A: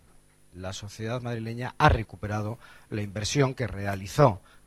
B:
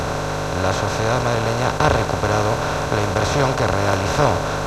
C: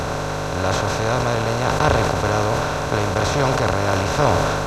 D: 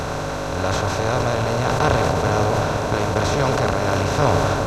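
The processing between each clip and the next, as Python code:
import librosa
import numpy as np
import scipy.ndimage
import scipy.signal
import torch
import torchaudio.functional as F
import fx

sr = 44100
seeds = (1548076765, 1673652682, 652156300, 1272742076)

y1 = fx.bin_compress(x, sr, power=0.2)
y1 = y1 * librosa.db_to_amplitude(-1.5)
y2 = fx.sustainer(y1, sr, db_per_s=22.0)
y2 = y2 * librosa.db_to_amplitude(-1.5)
y3 = fx.echo_bbd(y2, sr, ms=163, stages=1024, feedback_pct=82, wet_db=-8)
y3 = y3 * librosa.db_to_amplitude(-1.5)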